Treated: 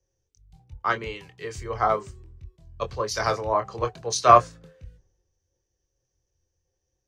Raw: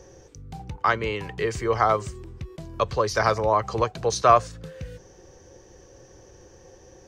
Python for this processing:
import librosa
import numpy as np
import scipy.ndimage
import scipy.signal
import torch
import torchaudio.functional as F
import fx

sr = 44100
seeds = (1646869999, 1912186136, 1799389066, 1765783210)

y = fx.chorus_voices(x, sr, voices=4, hz=0.36, base_ms=24, depth_ms=1.7, mix_pct=30)
y = fx.band_widen(y, sr, depth_pct=100)
y = F.gain(torch.from_numpy(y), -3.5).numpy()